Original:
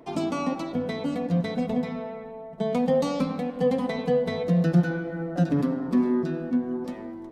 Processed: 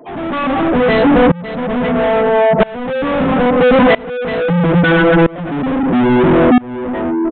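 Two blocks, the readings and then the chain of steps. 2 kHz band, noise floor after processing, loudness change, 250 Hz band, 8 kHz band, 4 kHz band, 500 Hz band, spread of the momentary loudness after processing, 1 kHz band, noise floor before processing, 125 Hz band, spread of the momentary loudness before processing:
+21.0 dB, −28 dBFS, +13.0 dB, +12.0 dB, can't be measured, +15.5 dB, +15.0 dB, 9 LU, +18.0 dB, −39 dBFS, +9.5 dB, 9 LU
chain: gate on every frequency bin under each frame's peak −15 dB strong
low-shelf EQ 240 Hz +5.5 dB
mid-hump overdrive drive 40 dB, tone 2,700 Hz, clips at −8 dBFS
shaped tremolo saw up 0.76 Hz, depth 95%
downsampling to 8,000 Hz
level +7 dB

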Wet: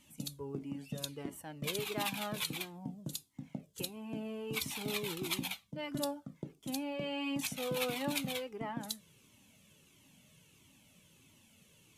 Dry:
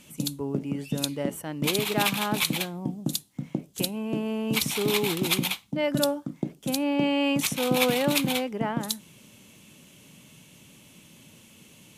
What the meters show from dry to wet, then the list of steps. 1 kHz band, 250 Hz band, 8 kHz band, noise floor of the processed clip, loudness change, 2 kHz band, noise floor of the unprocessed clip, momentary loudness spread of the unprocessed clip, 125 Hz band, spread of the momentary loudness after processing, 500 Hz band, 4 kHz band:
−11.5 dB, −13.0 dB, −11.0 dB, −66 dBFS, −12.0 dB, −11.5 dB, −54 dBFS, 9 LU, −12.0 dB, 9 LU, −12.0 dB, −11.0 dB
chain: tuned comb filter 89 Hz, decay 0.19 s, harmonics odd, mix 40%
flanger whose copies keep moving one way falling 1.5 Hz
level −3.5 dB

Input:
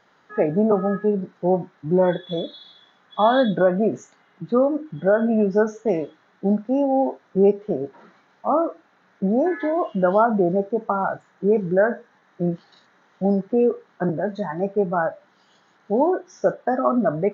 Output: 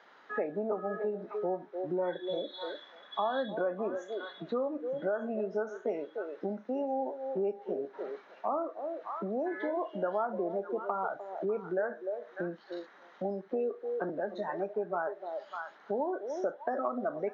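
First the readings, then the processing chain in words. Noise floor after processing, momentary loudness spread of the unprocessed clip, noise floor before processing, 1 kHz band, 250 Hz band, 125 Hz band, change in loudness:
−57 dBFS, 9 LU, −60 dBFS, −11.5 dB, −16.5 dB, −20.5 dB, −13.5 dB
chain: parametric band 140 Hz −7.5 dB 1.9 octaves
on a send: echo through a band-pass that steps 299 ms, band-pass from 480 Hz, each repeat 1.4 octaves, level −10 dB
on the sum: downward compressor 3 to 1, threshold −36 dBFS, peak gain reduction 17 dB
three-way crossover with the lows and the highs turned down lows −17 dB, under 190 Hz, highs −14 dB, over 5,000 Hz
level +2 dB

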